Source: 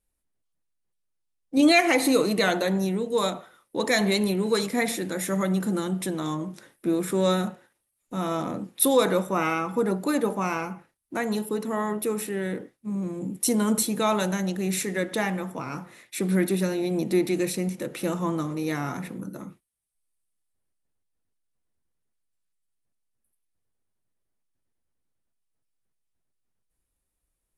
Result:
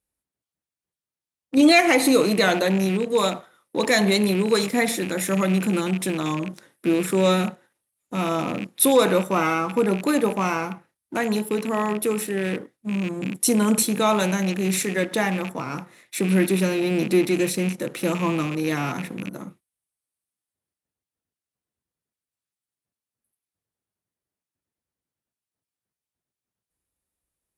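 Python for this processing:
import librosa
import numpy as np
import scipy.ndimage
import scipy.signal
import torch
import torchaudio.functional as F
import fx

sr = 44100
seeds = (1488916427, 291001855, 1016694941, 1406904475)

y = fx.rattle_buzz(x, sr, strikes_db=-34.0, level_db=-27.0)
y = fx.leveller(y, sr, passes=1)
y = scipy.signal.sosfilt(scipy.signal.butter(2, 70.0, 'highpass', fs=sr, output='sos'), y)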